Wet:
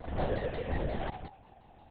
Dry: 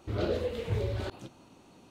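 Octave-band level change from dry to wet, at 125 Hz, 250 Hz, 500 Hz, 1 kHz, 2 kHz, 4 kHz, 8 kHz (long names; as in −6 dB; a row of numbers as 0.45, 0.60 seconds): −4.5 dB, −1.5 dB, −3.0 dB, +5.5 dB, +1.5 dB, −5.5 dB, below −25 dB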